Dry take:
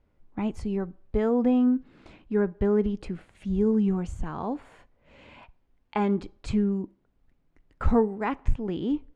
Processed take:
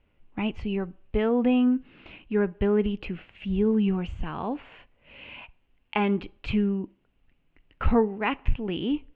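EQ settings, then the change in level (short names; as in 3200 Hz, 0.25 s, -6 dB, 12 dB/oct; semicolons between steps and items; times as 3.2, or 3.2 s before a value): synth low-pass 2800 Hz, resonance Q 5.3; 0.0 dB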